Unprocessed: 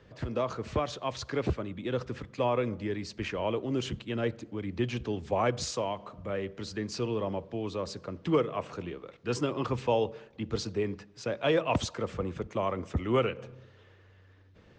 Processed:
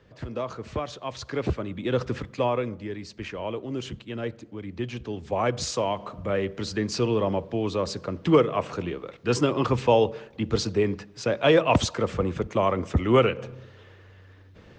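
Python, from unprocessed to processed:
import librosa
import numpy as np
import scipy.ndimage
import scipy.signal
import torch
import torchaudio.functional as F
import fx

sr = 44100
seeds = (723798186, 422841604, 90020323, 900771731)

y = fx.gain(x, sr, db=fx.line((1.04, -0.5), (2.13, 8.0), (2.79, -1.0), (5.02, -1.0), (6.03, 7.5)))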